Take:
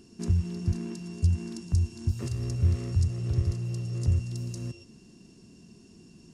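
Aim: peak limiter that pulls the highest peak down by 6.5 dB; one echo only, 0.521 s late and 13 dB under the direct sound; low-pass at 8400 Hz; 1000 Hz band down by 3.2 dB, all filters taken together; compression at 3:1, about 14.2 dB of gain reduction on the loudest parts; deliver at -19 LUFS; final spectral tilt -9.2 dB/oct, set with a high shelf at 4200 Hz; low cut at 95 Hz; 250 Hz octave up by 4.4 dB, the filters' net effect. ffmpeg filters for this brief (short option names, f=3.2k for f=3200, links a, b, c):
-af "highpass=95,lowpass=8.4k,equalizer=f=250:t=o:g=7,equalizer=f=1k:t=o:g=-4.5,highshelf=f=4.2k:g=-8,acompressor=threshold=-42dB:ratio=3,alimiter=level_in=11.5dB:limit=-24dB:level=0:latency=1,volume=-11.5dB,aecho=1:1:521:0.224,volume=25.5dB"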